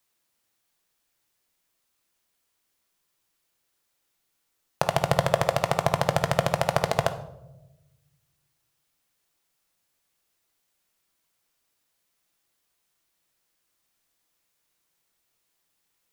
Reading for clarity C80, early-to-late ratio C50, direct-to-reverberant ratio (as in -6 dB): 15.5 dB, 12.0 dB, 8.0 dB